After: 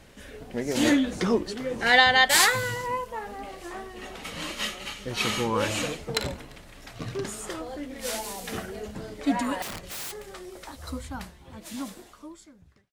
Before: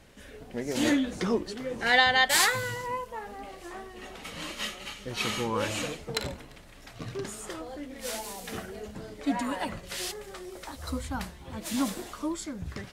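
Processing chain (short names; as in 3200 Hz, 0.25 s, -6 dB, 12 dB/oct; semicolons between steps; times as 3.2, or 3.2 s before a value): ending faded out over 3.61 s; 9.62–10.32 wrapped overs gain 34 dB; gain +3.5 dB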